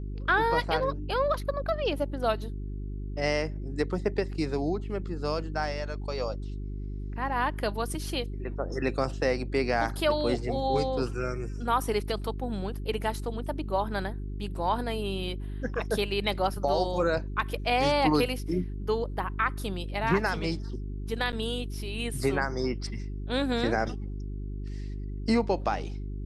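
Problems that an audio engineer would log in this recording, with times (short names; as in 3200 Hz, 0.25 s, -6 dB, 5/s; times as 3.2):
hum 50 Hz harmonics 8 -35 dBFS
21.32–21.33 gap 8.5 ms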